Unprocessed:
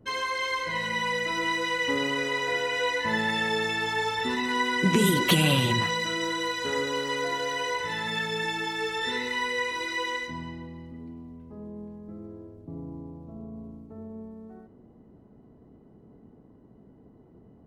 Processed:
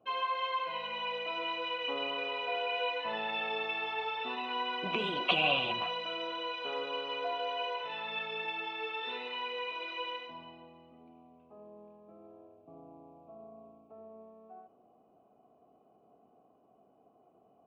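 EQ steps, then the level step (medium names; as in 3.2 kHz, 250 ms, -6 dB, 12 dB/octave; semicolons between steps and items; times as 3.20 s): vowel filter a; resonant low-pass 3.3 kHz, resonance Q 2; +6.5 dB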